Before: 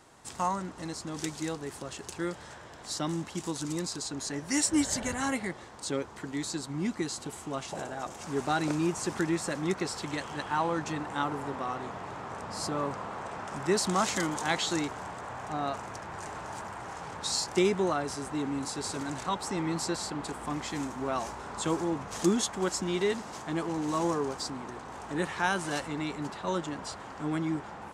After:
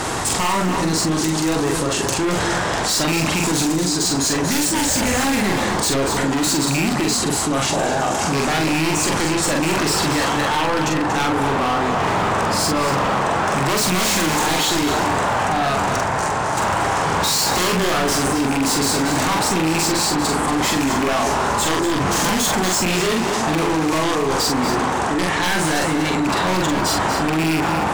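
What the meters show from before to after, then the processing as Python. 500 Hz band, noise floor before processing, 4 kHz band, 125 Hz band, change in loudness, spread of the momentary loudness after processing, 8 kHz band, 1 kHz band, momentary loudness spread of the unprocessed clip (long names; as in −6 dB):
+12.0 dB, −47 dBFS, +16.0 dB, +14.0 dB, +14.0 dB, 2 LU, +15.0 dB, +15.0 dB, 11 LU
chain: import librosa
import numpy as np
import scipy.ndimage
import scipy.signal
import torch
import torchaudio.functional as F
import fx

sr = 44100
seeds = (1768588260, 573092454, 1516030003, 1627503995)

y = fx.rattle_buzz(x, sr, strikes_db=-34.0, level_db=-22.0)
y = fx.fold_sine(y, sr, drive_db=15, ceiling_db=-11.0)
y = fx.tremolo_random(y, sr, seeds[0], hz=3.5, depth_pct=70)
y = np.clip(10.0 ** (21.5 / 20.0) * y, -1.0, 1.0) / 10.0 ** (21.5 / 20.0)
y = fx.doubler(y, sr, ms=44.0, db=-2.5)
y = y + 10.0 ** (-9.5 / 20.0) * np.pad(y, (int(237 * sr / 1000.0), 0))[:len(y)]
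y = fx.env_flatten(y, sr, amount_pct=70)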